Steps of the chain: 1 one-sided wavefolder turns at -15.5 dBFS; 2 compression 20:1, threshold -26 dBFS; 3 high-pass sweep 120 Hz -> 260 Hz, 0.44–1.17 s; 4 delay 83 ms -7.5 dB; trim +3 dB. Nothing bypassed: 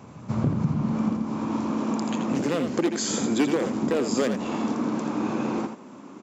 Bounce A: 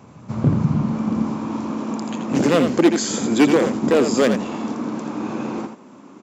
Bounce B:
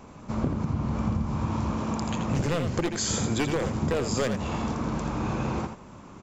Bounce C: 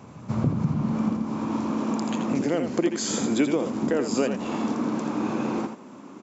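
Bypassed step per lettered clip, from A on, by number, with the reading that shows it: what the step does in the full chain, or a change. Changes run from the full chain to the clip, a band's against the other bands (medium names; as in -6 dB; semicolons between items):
2, mean gain reduction 3.0 dB; 3, 250 Hz band -4.5 dB; 1, distortion -8 dB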